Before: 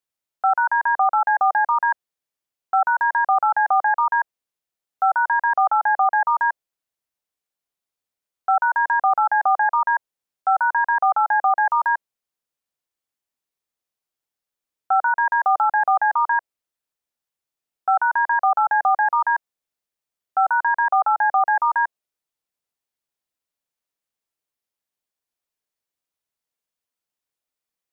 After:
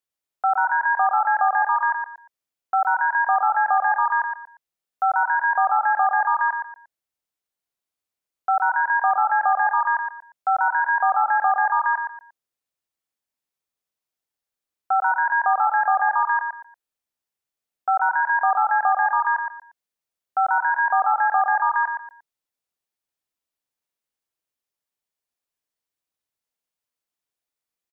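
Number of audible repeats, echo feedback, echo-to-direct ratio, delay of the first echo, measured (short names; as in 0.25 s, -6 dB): 3, 27%, -5.5 dB, 0.117 s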